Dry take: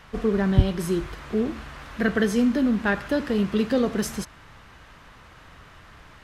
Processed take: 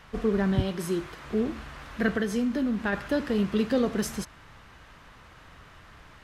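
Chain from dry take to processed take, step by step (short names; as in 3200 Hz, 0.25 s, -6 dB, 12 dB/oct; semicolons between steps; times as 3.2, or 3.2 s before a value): 0.55–1.24 HPF 170 Hz 6 dB/oct; 2.12–2.93 compressor 3:1, threshold -22 dBFS, peak gain reduction 5 dB; gain -2.5 dB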